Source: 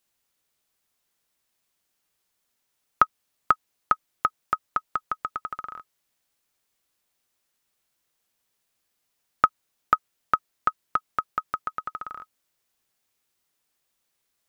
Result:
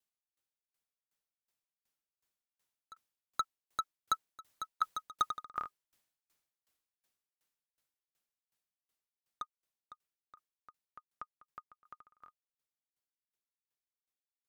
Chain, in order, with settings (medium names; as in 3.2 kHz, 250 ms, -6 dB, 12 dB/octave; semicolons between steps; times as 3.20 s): Doppler pass-by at 4.99 s, 11 m/s, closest 5.1 m; overload inside the chain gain 30.5 dB; sawtooth tremolo in dB decaying 2.7 Hz, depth 29 dB; trim +10.5 dB